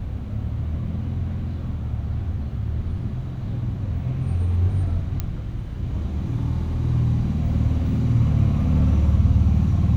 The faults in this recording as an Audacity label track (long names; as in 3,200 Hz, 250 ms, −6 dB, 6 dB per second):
5.200000	5.200000	click −12 dBFS